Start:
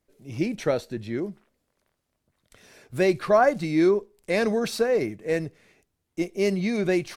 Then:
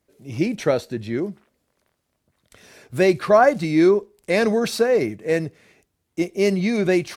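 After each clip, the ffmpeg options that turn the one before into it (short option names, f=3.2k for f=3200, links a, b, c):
-af "highpass=43,volume=4.5dB"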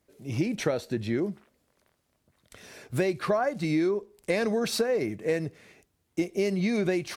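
-af "acompressor=threshold=-23dB:ratio=8"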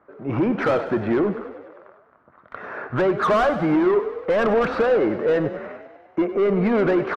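-filter_complex "[0:a]lowpass=f=1.3k:t=q:w=3.7,asplit=2[a][b];[b]highpass=f=720:p=1,volume=26dB,asoftclip=type=tanh:threshold=-10dB[c];[a][c]amix=inputs=2:normalize=0,lowpass=f=1k:p=1,volume=-6dB,asplit=9[d][e][f][g][h][i][j][k][l];[e]adelay=98,afreqshift=31,volume=-12.5dB[m];[f]adelay=196,afreqshift=62,volume=-16.2dB[n];[g]adelay=294,afreqshift=93,volume=-20dB[o];[h]adelay=392,afreqshift=124,volume=-23.7dB[p];[i]adelay=490,afreqshift=155,volume=-27.5dB[q];[j]adelay=588,afreqshift=186,volume=-31.2dB[r];[k]adelay=686,afreqshift=217,volume=-35dB[s];[l]adelay=784,afreqshift=248,volume=-38.7dB[t];[d][m][n][o][p][q][r][s][t]amix=inputs=9:normalize=0"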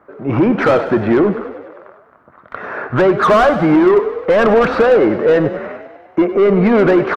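-af "asoftclip=type=hard:threshold=-12.5dB,volume=8dB"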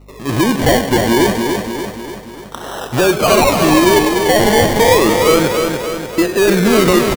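-filter_complex "[0:a]acrusher=samples=27:mix=1:aa=0.000001:lfo=1:lforange=16.2:lforate=0.29,aeval=exprs='val(0)+0.0112*(sin(2*PI*50*n/s)+sin(2*PI*2*50*n/s)/2+sin(2*PI*3*50*n/s)/3+sin(2*PI*4*50*n/s)/4+sin(2*PI*5*50*n/s)/5)':c=same,asplit=2[a][b];[b]aecho=0:1:293|586|879|1172|1465|1758|2051:0.531|0.287|0.155|0.0836|0.0451|0.0244|0.0132[c];[a][c]amix=inputs=2:normalize=0,volume=-1dB"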